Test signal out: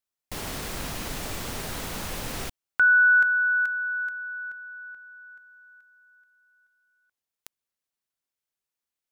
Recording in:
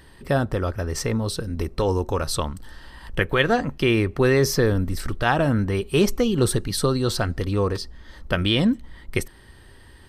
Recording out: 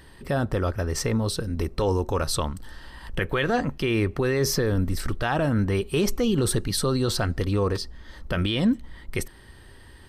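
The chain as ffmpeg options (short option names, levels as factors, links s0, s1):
-af "alimiter=limit=0.2:level=0:latency=1:release=21"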